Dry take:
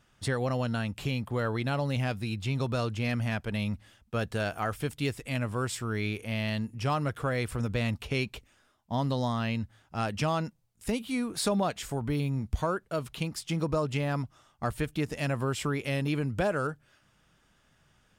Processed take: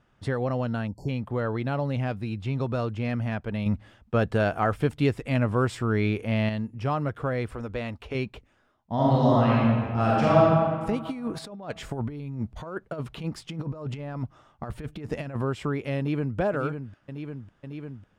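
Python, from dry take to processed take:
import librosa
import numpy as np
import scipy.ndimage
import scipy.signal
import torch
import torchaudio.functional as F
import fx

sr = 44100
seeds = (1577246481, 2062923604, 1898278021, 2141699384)

y = fx.spec_erase(x, sr, start_s=0.88, length_s=0.21, low_hz=1000.0, high_hz=4300.0)
y = fx.peak_eq(y, sr, hz=150.0, db=-13.0, octaves=1.1, at=(7.52, 8.15))
y = fx.reverb_throw(y, sr, start_s=8.94, length_s=1.47, rt60_s=1.9, drr_db=-7.5)
y = fx.over_compress(y, sr, threshold_db=-33.0, ratio=-0.5, at=(11.05, 15.42))
y = fx.echo_throw(y, sr, start_s=15.98, length_s=0.4, ms=550, feedback_pct=85, wet_db=-7.5)
y = fx.edit(y, sr, fx.clip_gain(start_s=3.66, length_s=2.83, db=5.5), tone=tone)
y = fx.lowpass(y, sr, hz=1100.0, slope=6)
y = fx.low_shelf(y, sr, hz=180.0, db=-3.5)
y = y * librosa.db_to_amplitude(4.0)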